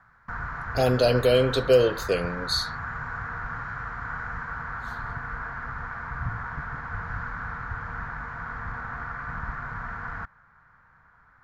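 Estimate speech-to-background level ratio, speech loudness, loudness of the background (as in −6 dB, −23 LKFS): 11.0 dB, −23.0 LKFS, −34.0 LKFS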